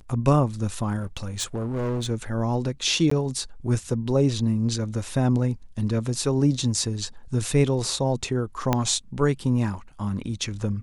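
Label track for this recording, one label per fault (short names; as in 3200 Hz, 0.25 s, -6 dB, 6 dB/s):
0.990000	2.070000	clipped -23.5 dBFS
3.100000	3.110000	gap 14 ms
8.730000	8.730000	pop -7 dBFS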